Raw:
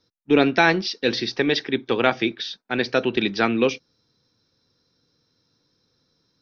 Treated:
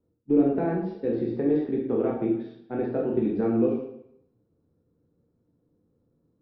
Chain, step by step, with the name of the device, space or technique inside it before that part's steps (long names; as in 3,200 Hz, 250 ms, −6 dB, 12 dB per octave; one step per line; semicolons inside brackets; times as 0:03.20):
television next door (downward compressor 4 to 1, threshold −20 dBFS, peak gain reduction 8 dB; low-pass filter 480 Hz 12 dB per octave; convolution reverb RT60 0.75 s, pre-delay 13 ms, DRR −3.5 dB)
level −1.5 dB